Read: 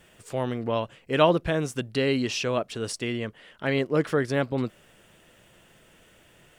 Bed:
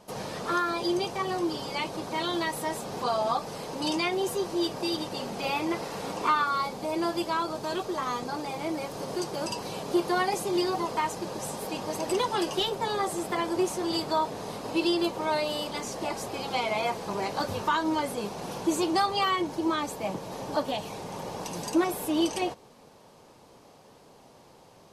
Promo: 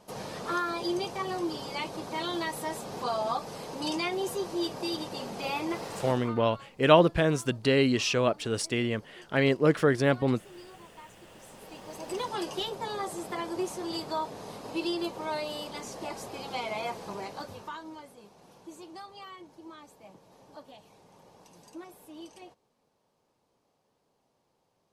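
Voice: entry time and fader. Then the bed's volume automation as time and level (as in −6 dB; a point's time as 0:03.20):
5.70 s, +1.0 dB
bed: 0:06.08 −3 dB
0:06.37 −22 dB
0:11.08 −22 dB
0:12.29 −5.5 dB
0:17.07 −5.5 dB
0:18.14 −20 dB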